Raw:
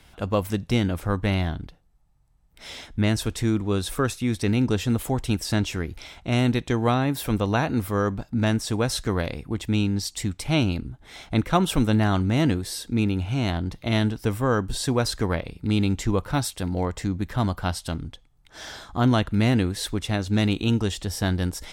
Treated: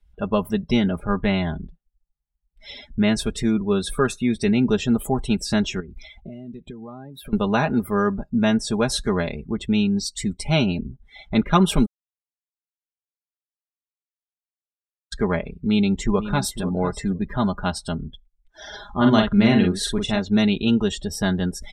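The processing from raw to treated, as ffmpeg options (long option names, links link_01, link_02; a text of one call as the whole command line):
ffmpeg -i in.wav -filter_complex "[0:a]asettb=1/sr,asplit=3[link_01][link_02][link_03];[link_01]atrim=end=5.804[link_04];[link_02]atrim=start=5.8:end=7.33,asetpts=PTS-STARTPTS,afade=type=in:duration=0.004:curve=qsin,afade=type=out:start_time=1.526:duration=0.004:curve=qsin,acompressor=threshold=-34dB:ratio=16:attack=3.2:release=140:knee=1:detection=peak[link_05];[link_03]atrim=start=7.326[link_06];[link_04][link_05]acrossfade=duration=0.004:curve1=hsin:curve2=qsin[link_07];[link_07][link_06]acrossfade=duration=0.004:curve1=qsin:curve2=hsin,asplit=2[link_08][link_09];[link_09]afade=type=in:start_time=15.65:duration=0.01,afade=type=out:start_time=16.62:duration=0.01,aecho=0:1:500|1000|1500:0.266073|0.0532145|0.0106429[link_10];[link_08][link_10]amix=inputs=2:normalize=0,asplit=3[link_11][link_12][link_13];[link_11]afade=type=out:start_time=18.71:duration=0.02[link_14];[link_12]asplit=2[link_15][link_16];[link_16]adelay=45,volume=-3.5dB[link_17];[link_15][link_17]amix=inputs=2:normalize=0,afade=type=in:start_time=18.71:duration=0.02,afade=type=out:start_time=20.18:duration=0.02[link_18];[link_13]afade=type=in:start_time=20.18:duration=0.02[link_19];[link_14][link_18][link_19]amix=inputs=3:normalize=0,asplit=3[link_20][link_21][link_22];[link_20]atrim=end=11.86,asetpts=PTS-STARTPTS,afade=type=out:start_time=11.856:duration=0.004:curve=hsin[link_23];[link_21]atrim=start=11.86:end=15.12,asetpts=PTS-STARTPTS,volume=0[link_24];[link_22]atrim=start=15.12,asetpts=PTS-STARTPTS,afade=type=in:duration=0.004:curve=hsin[link_25];[link_23][link_24][link_25]concat=n=3:v=0:a=1,bandreject=frequency=4900:width=26,afftdn=noise_reduction=29:noise_floor=-39,aecho=1:1:4.9:0.74,volume=1.5dB" out.wav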